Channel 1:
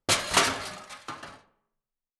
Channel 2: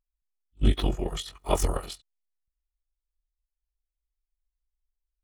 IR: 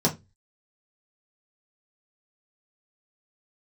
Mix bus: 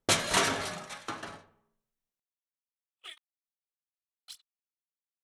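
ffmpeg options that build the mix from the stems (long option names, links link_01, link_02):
-filter_complex "[0:a]volume=0dB,asplit=2[link_01][link_02];[link_02]volume=-22dB[link_03];[1:a]highpass=frequency=900:width=0.5412,highpass=frequency=900:width=1.3066,aphaser=in_gain=1:out_gain=1:delay=3.3:decay=0.71:speed=2:type=sinusoidal,agate=range=-15dB:threshold=-47dB:ratio=16:detection=peak,adelay=2400,volume=-10dB,asplit=3[link_04][link_05][link_06];[link_04]atrim=end=3.18,asetpts=PTS-STARTPTS,afade=type=out:start_time=3.176:duration=0.004:curve=hsin[link_07];[link_05]atrim=start=3.18:end=4.28,asetpts=PTS-STARTPTS,volume=0[link_08];[link_06]atrim=start=4.28,asetpts=PTS-STARTPTS,afade=type=in:duration=0.004:curve=hsin[link_09];[link_07][link_08][link_09]concat=n=3:v=0:a=1[link_10];[2:a]atrim=start_sample=2205[link_11];[link_03][link_11]afir=irnorm=-1:irlink=0[link_12];[link_01][link_10][link_12]amix=inputs=3:normalize=0,alimiter=limit=-13dB:level=0:latency=1:release=225"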